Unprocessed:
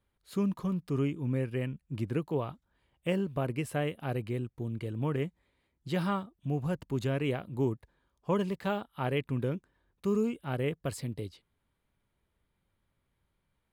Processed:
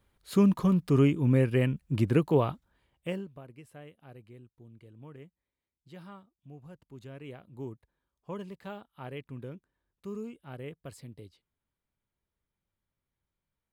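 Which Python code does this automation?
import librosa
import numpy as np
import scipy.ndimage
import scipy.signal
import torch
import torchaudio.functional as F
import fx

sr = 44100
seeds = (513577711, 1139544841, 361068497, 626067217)

y = fx.gain(x, sr, db=fx.line((2.47, 7.5), (3.14, -4.5), (3.43, -17.0), (6.82, -17.0), (7.68, -10.0)))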